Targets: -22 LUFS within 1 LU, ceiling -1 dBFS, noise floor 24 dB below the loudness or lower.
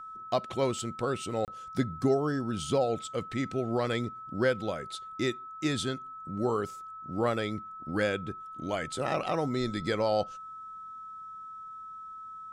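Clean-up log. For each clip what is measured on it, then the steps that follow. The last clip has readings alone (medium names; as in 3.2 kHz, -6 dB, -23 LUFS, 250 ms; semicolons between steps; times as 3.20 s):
dropouts 1; longest dropout 28 ms; steady tone 1.3 kHz; tone level -41 dBFS; loudness -31.5 LUFS; peak level -13.5 dBFS; loudness target -22.0 LUFS
-> interpolate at 1.45 s, 28 ms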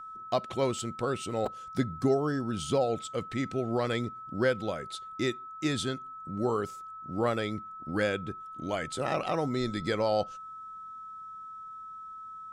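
dropouts 0; steady tone 1.3 kHz; tone level -41 dBFS
-> band-stop 1.3 kHz, Q 30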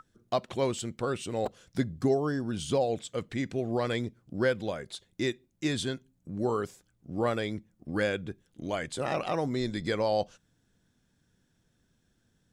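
steady tone not found; loudness -32.0 LUFS; peak level -14.0 dBFS; loudness target -22.0 LUFS
-> trim +10 dB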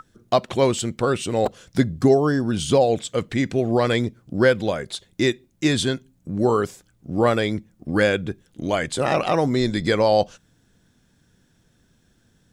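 loudness -22.0 LUFS; peak level -4.0 dBFS; noise floor -63 dBFS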